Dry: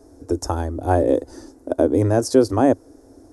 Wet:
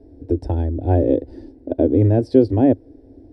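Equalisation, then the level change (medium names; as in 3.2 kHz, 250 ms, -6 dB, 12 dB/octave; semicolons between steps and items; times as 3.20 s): distance through air 130 m; bass shelf 460 Hz +8 dB; static phaser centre 2.9 kHz, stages 4; -2.0 dB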